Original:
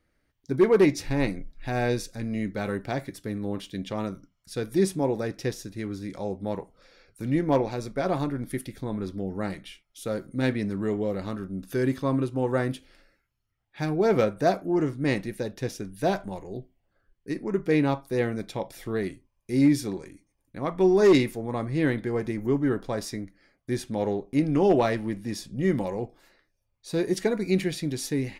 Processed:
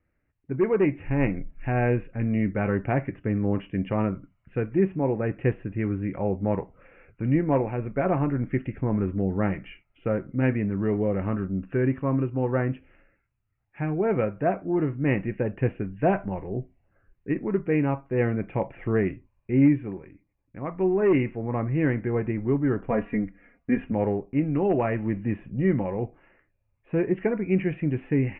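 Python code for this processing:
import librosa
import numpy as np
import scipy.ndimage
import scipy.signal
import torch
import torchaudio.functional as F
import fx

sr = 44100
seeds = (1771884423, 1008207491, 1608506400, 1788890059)

y = fx.comb(x, sr, ms=4.2, depth=0.92, at=(22.9, 23.92))
y = scipy.signal.sosfilt(scipy.signal.butter(16, 2800.0, 'lowpass', fs=sr, output='sos'), y)
y = fx.peak_eq(y, sr, hz=94.0, db=5.5, octaves=1.8)
y = fx.rider(y, sr, range_db=4, speed_s=0.5)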